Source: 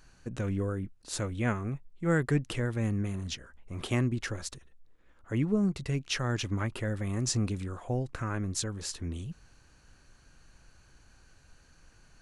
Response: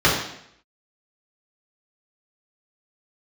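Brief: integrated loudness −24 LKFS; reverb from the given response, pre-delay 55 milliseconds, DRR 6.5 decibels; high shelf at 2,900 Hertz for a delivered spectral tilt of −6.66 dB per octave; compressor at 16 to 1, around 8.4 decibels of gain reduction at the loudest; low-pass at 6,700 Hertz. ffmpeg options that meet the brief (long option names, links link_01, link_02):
-filter_complex "[0:a]lowpass=6700,highshelf=frequency=2900:gain=-8,acompressor=threshold=-30dB:ratio=16,asplit=2[link_01][link_02];[1:a]atrim=start_sample=2205,adelay=55[link_03];[link_02][link_03]afir=irnorm=-1:irlink=0,volume=-28.5dB[link_04];[link_01][link_04]amix=inputs=2:normalize=0,volume=11.5dB"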